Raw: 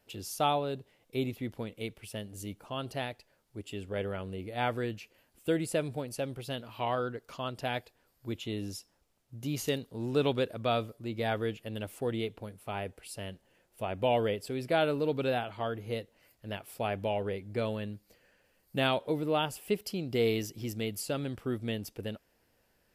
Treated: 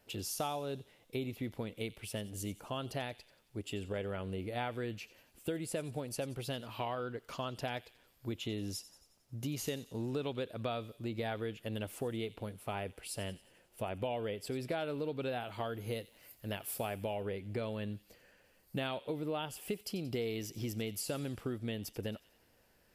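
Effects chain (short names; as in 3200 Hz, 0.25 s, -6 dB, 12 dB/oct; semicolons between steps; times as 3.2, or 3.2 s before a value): 15.4–16.97 high shelf 7600 Hz +11.5 dB; compressor 5:1, threshold -37 dBFS, peak gain reduction 13 dB; on a send: thin delay 90 ms, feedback 55%, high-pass 2800 Hz, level -14.5 dB; on the sum: gain +2 dB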